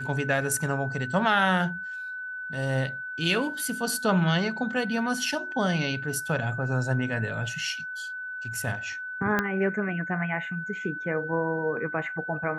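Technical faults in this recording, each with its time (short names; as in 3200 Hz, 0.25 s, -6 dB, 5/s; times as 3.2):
tone 1500 Hz -33 dBFS
9.39 pop -11 dBFS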